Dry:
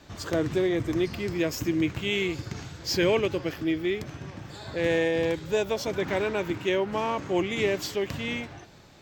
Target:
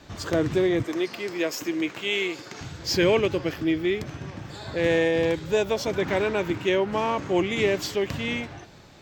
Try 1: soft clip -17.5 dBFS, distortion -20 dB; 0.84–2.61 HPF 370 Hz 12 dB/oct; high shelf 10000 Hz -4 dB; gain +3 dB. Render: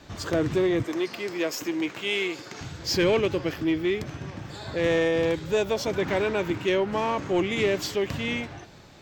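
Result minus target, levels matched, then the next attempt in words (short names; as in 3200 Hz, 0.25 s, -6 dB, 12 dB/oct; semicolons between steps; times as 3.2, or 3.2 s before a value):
soft clip: distortion +17 dB
soft clip -7.5 dBFS, distortion -38 dB; 0.84–2.61 HPF 370 Hz 12 dB/oct; high shelf 10000 Hz -4 dB; gain +3 dB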